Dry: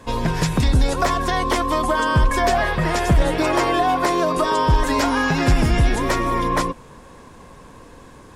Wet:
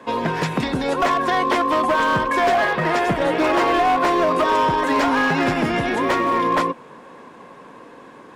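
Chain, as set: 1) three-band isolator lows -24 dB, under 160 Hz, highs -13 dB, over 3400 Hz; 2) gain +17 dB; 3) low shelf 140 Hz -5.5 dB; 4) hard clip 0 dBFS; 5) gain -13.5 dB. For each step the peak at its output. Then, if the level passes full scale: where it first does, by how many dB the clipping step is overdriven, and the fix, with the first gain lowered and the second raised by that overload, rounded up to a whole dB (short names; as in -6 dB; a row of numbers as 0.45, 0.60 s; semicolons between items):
-7.5, +9.5, +9.0, 0.0, -13.5 dBFS; step 2, 9.0 dB; step 2 +8 dB, step 5 -4.5 dB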